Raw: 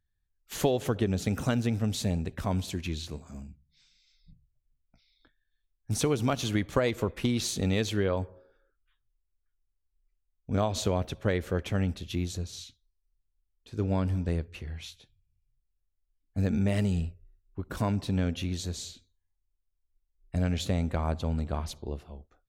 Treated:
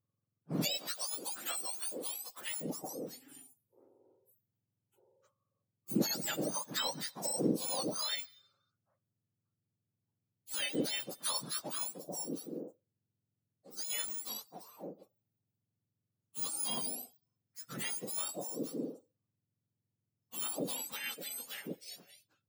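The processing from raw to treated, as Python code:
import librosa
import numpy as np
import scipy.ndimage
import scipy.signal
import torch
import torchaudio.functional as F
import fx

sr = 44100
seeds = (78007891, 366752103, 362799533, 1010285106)

y = fx.octave_mirror(x, sr, pivot_hz=1400.0)
y = fx.highpass(y, sr, hz=590.0, slope=12, at=(0.77, 2.61))
y = fx.peak_eq(y, sr, hz=9800.0, db=10.0, octaves=0.37, at=(11.09, 11.59))
y = F.gain(torch.from_numpy(y), -4.0).numpy()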